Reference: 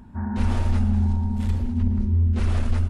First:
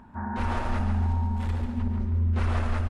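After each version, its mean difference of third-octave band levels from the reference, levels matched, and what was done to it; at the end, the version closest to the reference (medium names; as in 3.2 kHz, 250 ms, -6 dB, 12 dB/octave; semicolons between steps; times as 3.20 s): 4.0 dB: peaking EQ 1.1 kHz +12.5 dB 2.9 oct; on a send: feedback delay 142 ms, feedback 38%, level -7 dB; on the sum: trim -8 dB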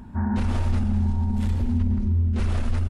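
1.5 dB: peak limiter -20 dBFS, peak gain reduction 8.5 dB; on a send: feedback delay 136 ms, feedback 59%, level -16 dB; on the sum: trim +4 dB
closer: second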